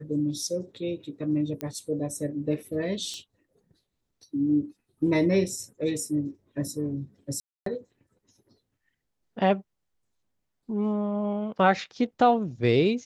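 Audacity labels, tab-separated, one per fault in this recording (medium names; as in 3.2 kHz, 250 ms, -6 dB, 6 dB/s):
1.610000	1.610000	pop -17 dBFS
3.140000	3.140000	pop -25 dBFS
7.400000	7.660000	dropout 263 ms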